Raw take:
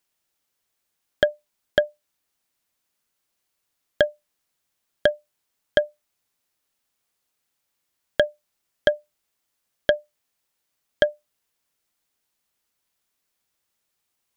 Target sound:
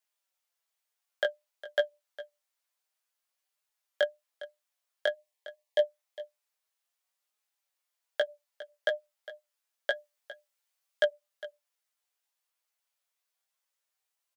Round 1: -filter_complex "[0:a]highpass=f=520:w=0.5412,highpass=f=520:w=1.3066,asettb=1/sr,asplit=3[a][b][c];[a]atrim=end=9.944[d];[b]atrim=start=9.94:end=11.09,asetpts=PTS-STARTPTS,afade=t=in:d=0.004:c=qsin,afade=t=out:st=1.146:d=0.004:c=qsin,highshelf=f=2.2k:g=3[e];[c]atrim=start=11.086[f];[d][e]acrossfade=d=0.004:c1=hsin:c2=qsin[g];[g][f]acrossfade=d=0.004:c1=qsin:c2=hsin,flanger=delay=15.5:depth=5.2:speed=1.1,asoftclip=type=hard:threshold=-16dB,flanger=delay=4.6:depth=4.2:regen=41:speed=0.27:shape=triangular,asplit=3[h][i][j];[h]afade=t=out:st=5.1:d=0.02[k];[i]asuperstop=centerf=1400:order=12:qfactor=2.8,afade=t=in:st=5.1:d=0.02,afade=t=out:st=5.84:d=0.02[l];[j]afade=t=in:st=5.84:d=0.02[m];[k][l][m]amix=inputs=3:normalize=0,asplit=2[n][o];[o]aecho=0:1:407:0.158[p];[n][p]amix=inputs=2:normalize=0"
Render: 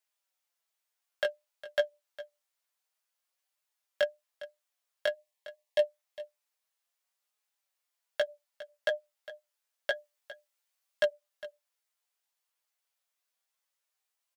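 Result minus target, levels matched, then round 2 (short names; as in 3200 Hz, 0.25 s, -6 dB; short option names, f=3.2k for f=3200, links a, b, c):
hard clip: distortion +28 dB
-filter_complex "[0:a]highpass=f=520:w=0.5412,highpass=f=520:w=1.3066,asettb=1/sr,asplit=3[a][b][c];[a]atrim=end=9.944[d];[b]atrim=start=9.94:end=11.09,asetpts=PTS-STARTPTS,afade=t=in:d=0.004:c=qsin,afade=t=out:st=1.146:d=0.004:c=qsin,highshelf=f=2.2k:g=3[e];[c]atrim=start=11.086[f];[d][e]acrossfade=d=0.004:c1=hsin:c2=qsin[g];[g][f]acrossfade=d=0.004:c1=qsin:c2=hsin,flanger=delay=15.5:depth=5.2:speed=1.1,asoftclip=type=hard:threshold=-9.5dB,flanger=delay=4.6:depth=4.2:regen=41:speed=0.27:shape=triangular,asplit=3[h][i][j];[h]afade=t=out:st=5.1:d=0.02[k];[i]asuperstop=centerf=1400:order=12:qfactor=2.8,afade=t=in:st=5.1:d=0.02,afade=t=out:st=5.84:d=0.02[l];[j]afade=t=in:st=5.84:d=0.02[m];[k][l][m]amix=inputs=3:normalize=0,asplit=2[n][o];[o]aecho=0:1:407:0.158[p];[n][p]amix=inputs=2:normalize=0"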